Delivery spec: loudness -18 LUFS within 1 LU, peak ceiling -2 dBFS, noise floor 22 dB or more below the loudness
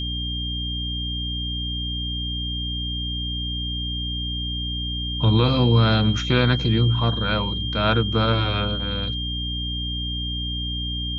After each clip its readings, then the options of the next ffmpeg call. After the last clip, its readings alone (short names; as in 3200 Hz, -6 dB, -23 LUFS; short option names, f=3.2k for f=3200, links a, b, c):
hum 60 Hz; harmonics up to 300 Hz; hum level -27 dBFS; steady tone 3200 Hz; tone level -28 dBFS; loudness -23.0 LUFS; peak -6.0 dBFS; loudness target -18.0 LUFS
-> -af "bandreject=f=60:t=h:w=4,bandreject=f=120:t=h:w=4,bandreject=f=180:t=h:w=4,bandreject=f=240:t=h:w=4,bandreject=f=300:t=h:w=4"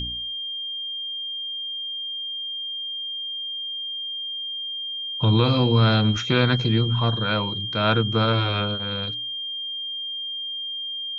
hum none; steady tone 3200 Hz; tone level -28 dBFS
-> -af "bandreject=f=3.2k:w=30"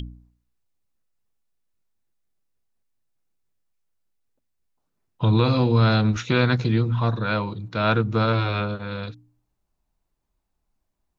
steady tone none; loudness -22.0 LUFS; peak -6.5 dBFS; loudness target -18.0 LUFS
-> -af "volume=4dB"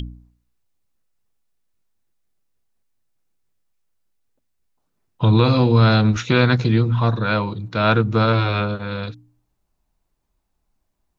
loudness -18.0 LUFS; peak -2.5 dBFS; noise floor -73 dBFS